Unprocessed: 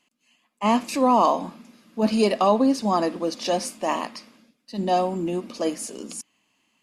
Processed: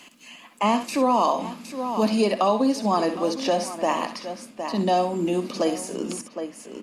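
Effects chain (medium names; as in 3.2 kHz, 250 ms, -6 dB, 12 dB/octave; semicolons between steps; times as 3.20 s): bass shelf 160 Hz -4 dB; multi-tap echo 61/67/763 ms -12.5/-16.5/-17.5 dB; three bands compressed up and down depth 70%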